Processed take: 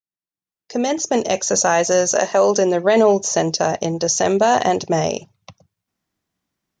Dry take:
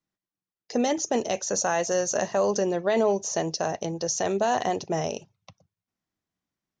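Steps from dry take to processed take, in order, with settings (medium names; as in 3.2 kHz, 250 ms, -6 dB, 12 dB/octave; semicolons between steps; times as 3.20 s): fade-in on the opening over 1.44 s; 2.15–2.83 s: high-pass 330 Hz -> 150 Hz 12 dB/octave; trim +9 dB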